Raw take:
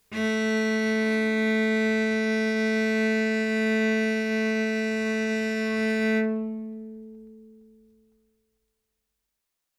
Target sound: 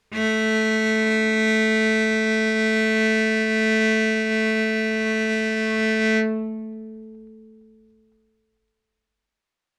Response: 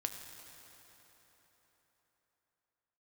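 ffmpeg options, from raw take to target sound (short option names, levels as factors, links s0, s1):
-af "adynamicsmooth=sensitivity=1:basefreq=1900,crystalizer=i=7:c=0,volume=1.33"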